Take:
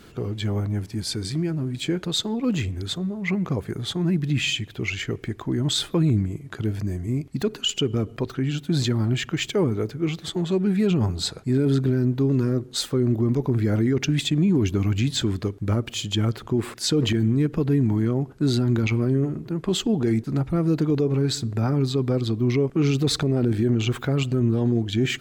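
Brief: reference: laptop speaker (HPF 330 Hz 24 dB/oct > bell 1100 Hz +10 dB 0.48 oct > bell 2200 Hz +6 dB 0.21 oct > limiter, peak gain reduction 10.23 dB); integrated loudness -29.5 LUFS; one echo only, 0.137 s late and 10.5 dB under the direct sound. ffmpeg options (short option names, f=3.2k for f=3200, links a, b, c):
-af "highpass=f=330:w=0.5412,highpass=f=330:w=1.3066,equalizer=f=1.1k:t=o:w=0.48:g=10,equalizer=f=2.2k:t=o:w=0.21:g=6,aecho=1:1:137:0.299,volume=1dB,alimiter=limit=-19.5dB:level=0:latency=1"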